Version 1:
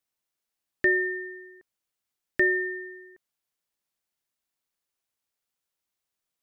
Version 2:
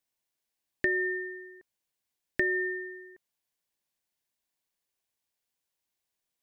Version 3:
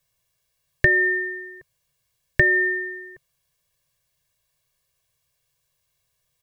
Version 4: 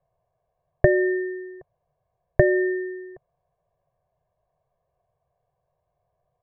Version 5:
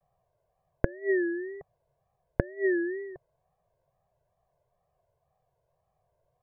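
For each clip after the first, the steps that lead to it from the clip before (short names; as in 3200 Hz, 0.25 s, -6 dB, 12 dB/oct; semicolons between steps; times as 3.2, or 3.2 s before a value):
notch 1300 Hz, Q 6.1; compressor, threshold -24 dBFS, peak gain reduction 6.5 dB
resonant low shelf 180 Hz +7 dB, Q 3; comb 1.8 ms, depth 92%; gain +8.5 dB
synth low-pass 740 Hz, resonance Q 4.9; gain +3.5 dB
flipped gate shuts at -13 dBFS, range -25 dB; wow and flutter 130 cents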